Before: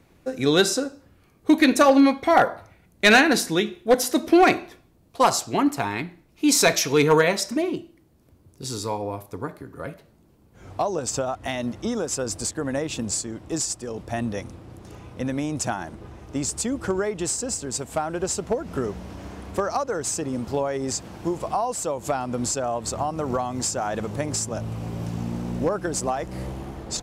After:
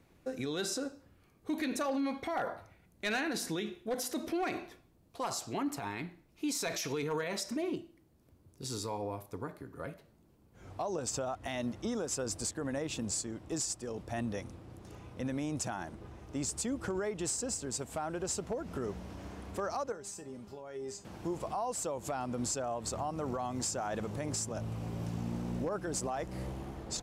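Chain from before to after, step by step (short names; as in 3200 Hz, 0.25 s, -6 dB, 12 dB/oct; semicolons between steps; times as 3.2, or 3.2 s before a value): limiter -19.5 dBFS, peak gain reduction 11.5 dB; 19.92–21.05 resonator 200 Hz, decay 0.25 s, harmonics all, mix 80%; gain -7.5 dB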